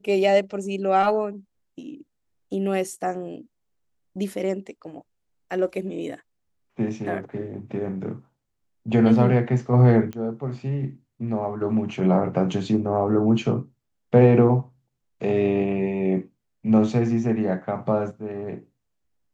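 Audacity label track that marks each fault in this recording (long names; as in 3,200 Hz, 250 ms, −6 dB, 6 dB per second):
10.130000	10.130000	click −21 dBFS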